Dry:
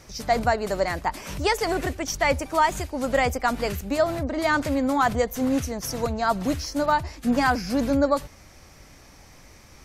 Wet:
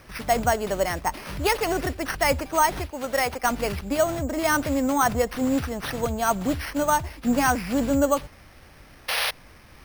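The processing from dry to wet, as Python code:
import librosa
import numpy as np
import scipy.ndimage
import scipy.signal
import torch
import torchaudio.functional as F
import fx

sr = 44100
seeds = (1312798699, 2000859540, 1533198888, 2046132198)

y = fx.low_shelf(x, sr, hz=320.0, db=-11.5, at=(2.9, 3.44))
y = fx.spec_paint(y, sr, seeds[0], shape='noise', start_s=9.08, length_s=0.23, low_hz=450.0, high_hz=5700.0, level_db=-25.0)
y = np.repeat(y[::6], 6)[:len(y)]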